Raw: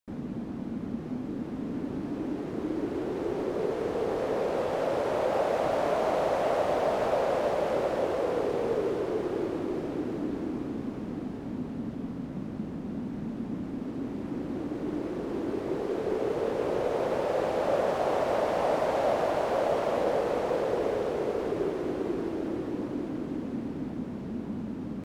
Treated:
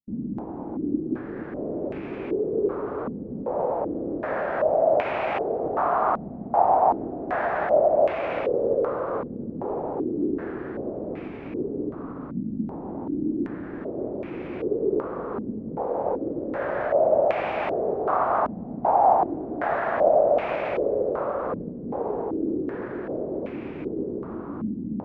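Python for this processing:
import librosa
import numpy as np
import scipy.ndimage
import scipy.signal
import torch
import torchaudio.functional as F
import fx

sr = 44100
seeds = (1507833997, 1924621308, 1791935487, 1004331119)

y = fx.formant_shift(x, sr, semitones=3)
y = fx.filter_held_lowpass(y, sr, hz=2.6, low_hz=220.0, high_hz=2400.0)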